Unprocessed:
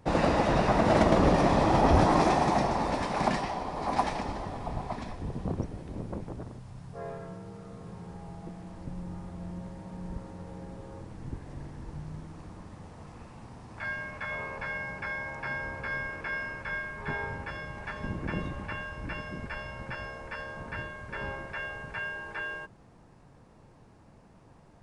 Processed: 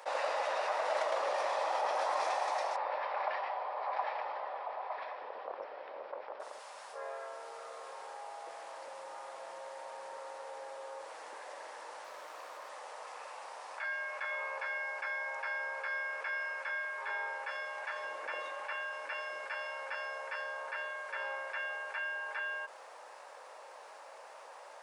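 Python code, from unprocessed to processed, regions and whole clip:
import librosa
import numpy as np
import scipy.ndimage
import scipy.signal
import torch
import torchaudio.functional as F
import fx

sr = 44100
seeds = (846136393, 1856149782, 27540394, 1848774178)

y = fx.chain(x, sr, fx.bandpass_edges(low_hz=150.0, high_hz=2400.0),
    fx.resample_bad(factor=4, down='none', up='filtered'), at=(2.76, 6.4))
y = fx.chain(y, sr, fx.notch(hz=840.0, q=12.0),
    fx.running_max(window=3), at=(12.04, 12.69))
y = scipy.signal.sosfilt(scipy.signal.cheby1(4, 1.0, 550.0, 'highpass', fs=sr, output='sos'), y)
y = fx.notch(y, sr, hz=690.0, q=17.0)
y = fx.env_flatten(y, sr, amount_pct=50)
y = F.gain(torch.from_numpy(y), -8.0).numpy()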